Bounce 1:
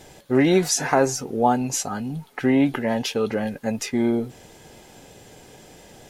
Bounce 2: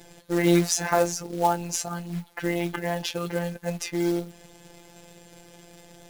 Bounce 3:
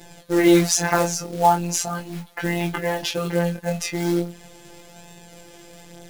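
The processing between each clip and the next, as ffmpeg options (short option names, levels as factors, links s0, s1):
-af "equalizer=f=64:w=1.8:g=11,afftfilt=real='hypot(re,im)*cos(PI*b)':imag='0':win_size=1024:overlap=0.75,acrusher=bits=4:mode=log:mix=0:aa=0.000001"
-af "flanger=delay=18.5:depth=6.3:speed=0.39,volume=2.51"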